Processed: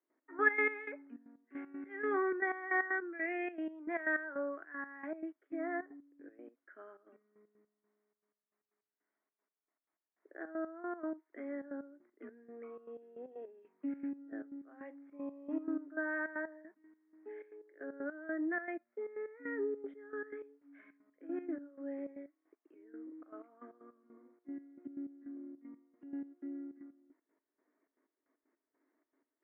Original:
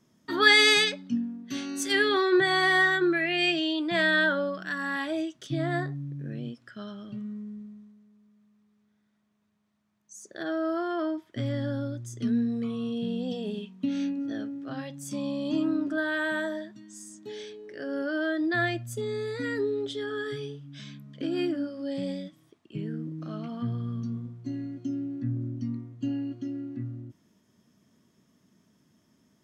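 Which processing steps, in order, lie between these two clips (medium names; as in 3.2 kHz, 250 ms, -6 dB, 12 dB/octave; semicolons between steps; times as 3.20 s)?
Chebyshev band-pass 280–2200 Hz, order 5; trance gate ".x..x.x..xxx" 155 bpm -12 dB; trim -7.5 dB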